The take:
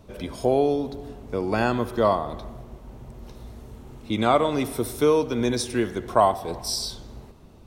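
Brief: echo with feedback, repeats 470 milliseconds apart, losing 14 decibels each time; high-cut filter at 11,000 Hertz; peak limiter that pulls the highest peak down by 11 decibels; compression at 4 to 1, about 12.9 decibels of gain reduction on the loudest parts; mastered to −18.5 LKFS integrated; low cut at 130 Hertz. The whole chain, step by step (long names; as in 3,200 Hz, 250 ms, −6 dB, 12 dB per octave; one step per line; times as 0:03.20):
high-pass filter 130 Hz
low-pass filter 11,000 Hz
downward compressor 4 to 1, threshold −29 dBFS
brickwall limiter −25.5 dBFS
repeating echo 470 ms, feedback 20%, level −14 dB
level +18.5 dB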